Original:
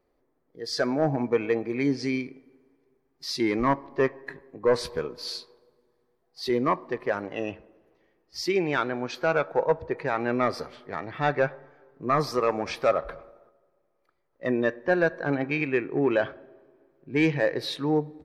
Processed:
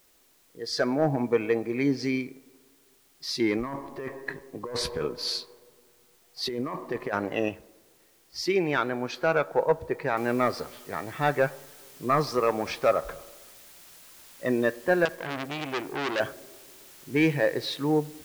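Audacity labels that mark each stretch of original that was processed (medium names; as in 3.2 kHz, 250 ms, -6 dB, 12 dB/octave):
3.560000	7.490000	compressor with a negative ratio -30 dBFS
10.170000	10.170000	noise floor step -63 dB -51 dB
15.050000	16.200000	transformer saturation saturates under 2.6 kHz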